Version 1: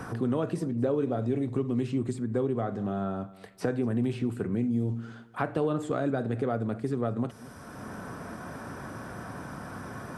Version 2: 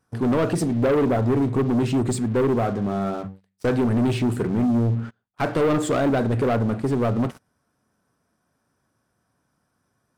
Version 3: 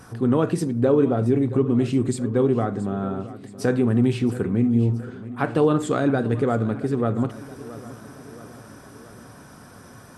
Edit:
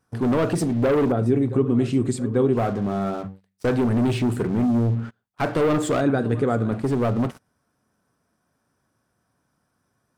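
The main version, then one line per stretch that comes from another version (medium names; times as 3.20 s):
2
1.12–2.57 s: from 3
6.01–6.72 s: from 3
not used: 1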